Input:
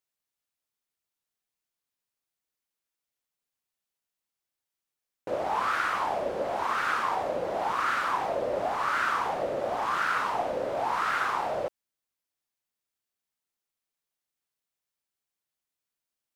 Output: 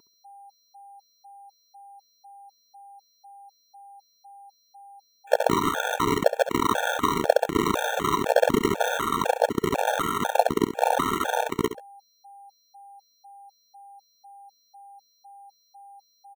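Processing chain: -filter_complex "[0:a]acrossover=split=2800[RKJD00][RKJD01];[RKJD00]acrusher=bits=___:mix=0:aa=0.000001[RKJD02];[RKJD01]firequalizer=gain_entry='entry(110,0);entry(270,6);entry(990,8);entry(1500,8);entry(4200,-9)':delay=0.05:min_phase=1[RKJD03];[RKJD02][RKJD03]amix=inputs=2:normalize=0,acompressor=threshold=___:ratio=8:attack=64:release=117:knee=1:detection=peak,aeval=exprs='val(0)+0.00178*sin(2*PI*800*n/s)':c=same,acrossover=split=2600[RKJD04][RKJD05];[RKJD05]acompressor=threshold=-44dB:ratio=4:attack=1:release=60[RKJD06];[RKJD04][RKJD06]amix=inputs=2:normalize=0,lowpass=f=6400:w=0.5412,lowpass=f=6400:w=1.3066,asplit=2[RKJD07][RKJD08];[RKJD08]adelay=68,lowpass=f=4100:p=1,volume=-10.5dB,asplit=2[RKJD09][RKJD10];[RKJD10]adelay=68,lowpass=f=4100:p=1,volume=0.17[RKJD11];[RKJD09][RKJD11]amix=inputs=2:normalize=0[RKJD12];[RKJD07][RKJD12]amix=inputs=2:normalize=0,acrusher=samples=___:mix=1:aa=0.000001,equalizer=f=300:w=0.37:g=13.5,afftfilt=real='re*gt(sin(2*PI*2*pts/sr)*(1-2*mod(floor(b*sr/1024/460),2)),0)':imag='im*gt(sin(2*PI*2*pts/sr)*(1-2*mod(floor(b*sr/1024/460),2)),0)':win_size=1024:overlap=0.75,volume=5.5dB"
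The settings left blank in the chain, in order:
3, -38dB, 9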